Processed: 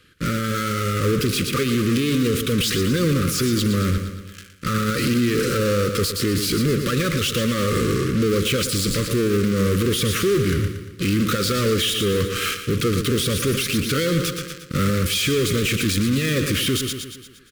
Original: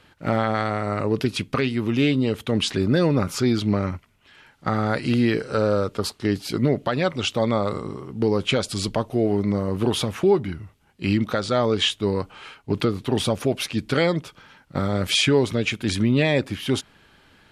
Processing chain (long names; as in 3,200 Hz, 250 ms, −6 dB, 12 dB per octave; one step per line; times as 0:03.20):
in parallel at −5.5 dB: fuzz pedal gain 43 dB, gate −44 dBFS
on the sum: Chebyshev band-stop filter 510–1,200 Hz, order 3
high-shelf EQ 6,700 Hz +7 dB
on a send: repeating echo 116 ms, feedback 52%, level −11 dB
on the sum: brickwall limiter −12 dBFS, peak gain reduction 9.5 dB
de-essing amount 35%